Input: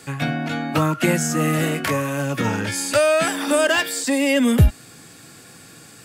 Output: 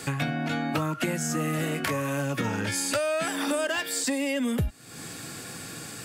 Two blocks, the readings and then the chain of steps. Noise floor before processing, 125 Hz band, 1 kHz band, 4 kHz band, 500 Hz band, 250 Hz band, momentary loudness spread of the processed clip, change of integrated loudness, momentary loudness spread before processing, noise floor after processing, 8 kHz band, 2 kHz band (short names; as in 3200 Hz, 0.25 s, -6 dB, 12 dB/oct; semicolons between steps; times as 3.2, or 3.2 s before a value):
-45 dBFS, -9.0 dB, -7.0 dB, -6.5 dB, -9.0 dB, -7.5 dB, 11 LU, -8.5 dB, 7 LU, -41 dBFS, -5.0 dB, -7.5 dB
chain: compressor 6:1, threshold -31 dBFS, peak gain reduction 20.5 dB; gain +5 dB